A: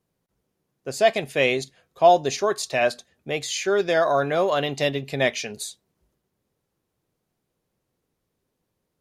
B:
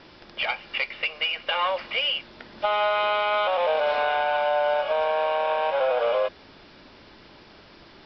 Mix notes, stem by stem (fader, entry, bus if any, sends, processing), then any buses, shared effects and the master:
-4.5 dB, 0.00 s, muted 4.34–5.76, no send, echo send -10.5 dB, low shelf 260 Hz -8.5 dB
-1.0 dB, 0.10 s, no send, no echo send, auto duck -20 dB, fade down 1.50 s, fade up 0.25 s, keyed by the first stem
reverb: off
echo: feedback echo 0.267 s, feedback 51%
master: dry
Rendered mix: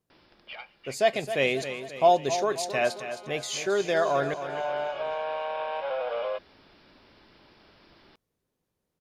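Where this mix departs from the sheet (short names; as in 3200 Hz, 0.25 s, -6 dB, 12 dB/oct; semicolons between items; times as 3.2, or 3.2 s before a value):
stem A: missing low shelf 260 Hz -8.5 dB; stem B -1.0 dB -> -7.5 dB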